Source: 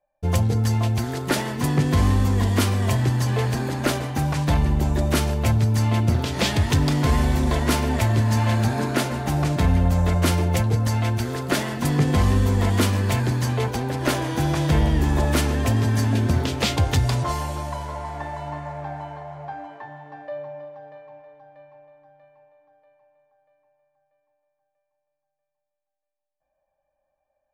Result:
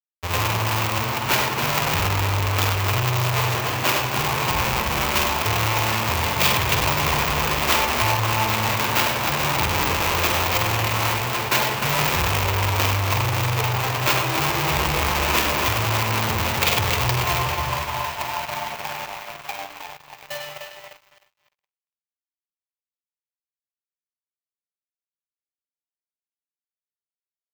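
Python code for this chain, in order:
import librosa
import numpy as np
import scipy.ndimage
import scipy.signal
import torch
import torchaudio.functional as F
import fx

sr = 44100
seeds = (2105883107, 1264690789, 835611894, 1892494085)

p1 = fx.halfwave_hold(x, sr)
p2 = fx.highpass(p1, sr, hz=110.0, slope=6)
p3 = fx.echo_feedback(p2, sr, ms=277, feedback_pct=53, wet_db=-6.5)
p4 = fx.chopper(p3, sr, hz=3.3, depth_pct=60, duty_pct=90)
p5 = p4 + fx.echo_multitap(p4, sr, ms=(49, 99, 191), db=(-4.5, -5.5, -12.0), dry=0)
p6 = fx.chorus_voices(p5, sr, voices=4, hz=0.19, base_ms=14, depth_ms=4.9, mix_pct=25)
p7 = fx.leveller(p6, sr, passes=5)
p8 = fx.high_shelf(p7, sr, hz=7500.0, db=6.0)
p9 = fx.power_curve(p8, sr, exponent=3.0)
p10 = fx.graphic_eq_15(p9, sr, hz=(250, 1000, 2500, 10000), db=(-10, 9, 8, -10))
y = p10 * 10.0 ** (-2.5 / 20.0)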